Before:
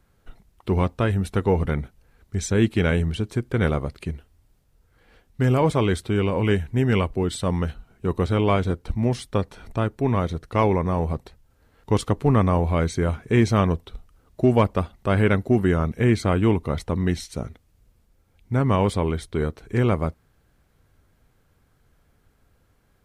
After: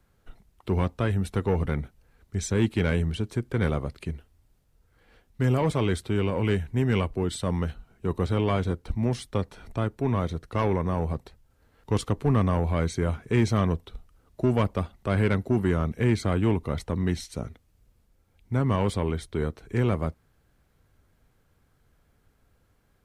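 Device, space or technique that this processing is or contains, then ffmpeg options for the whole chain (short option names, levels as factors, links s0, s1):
one-band saturation: -filter_complex "[0:a]acrossover=split=210|2700[s0][s1][s2];[s1]asoftclip=type=tanh:threshold=0.15[s3];[s0][s3][s2]amix=inputs=3:normalize=0,volume=0.708"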